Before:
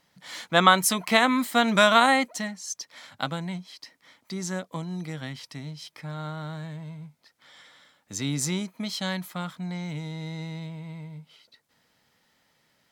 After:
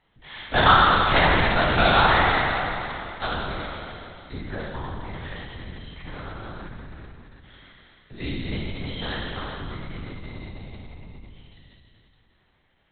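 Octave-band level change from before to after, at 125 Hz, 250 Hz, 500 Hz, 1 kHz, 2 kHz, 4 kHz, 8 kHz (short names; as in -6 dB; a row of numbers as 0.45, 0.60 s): +3.5 dB, -3.0 dB, +1.0 dB, +3.5 dB, +3.5 dB, +1.5 dB, under -40 dB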